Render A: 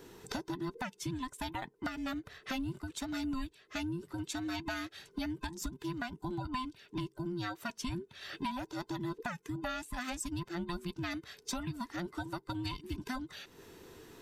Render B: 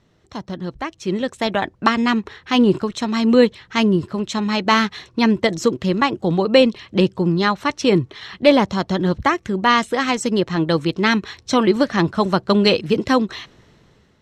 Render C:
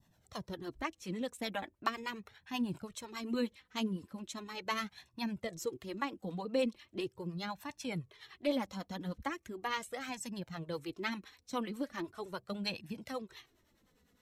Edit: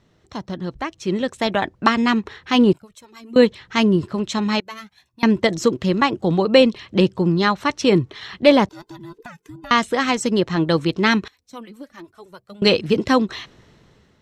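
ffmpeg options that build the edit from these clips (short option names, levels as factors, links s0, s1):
-filter_complex "[2:a]asplit=3[s0][s1][s2];[1:a]asplit=5[s3][s4][s5][s6][s7];[s3]atrim=end=2.732[s8];[s0]atrim=start=2.728:end=3.362[s9];[s4]atrim=start=3.358:end=4.602[s10];[s1]atrim=start=4.598:end=5.232[s11];[s5]atrim=start=5.228:end=8.692[s12];[0:a]atrim=start=8.688:end=9.712[s13];[s6]atrim=start=9.708:end=11.282[s14];[s2]atrim=start=11.278:end=12.622[s15];[s7]atrim=start=12.618[s16];[s8][s9]acrossfade=d=0.004:c1=hsin:c2=hsin[s17];[s17][s10]acrossfade=d=0.004:c1=hsin:c2=hsin[s18];[s18][s11]acrossfade=d=0.004:c1=hsin:c2=hsin[s19];[s19][s12]acrossfade=d=0.004:c1=hsin:c2=hsin[s20];[s20][s13]acrossfade=d=0.004:c1=hsin:c2=hsin[s21];[s21][s14]acrossfade=d=0.004:c1=hsin:c2=hsin[s22];[s22][s15]acrossfade=d=0.004:c1=hsin:c2=hsin[s23];[s23][s16]acrossfade=d=0.004:c1=hsin:c2=hsin"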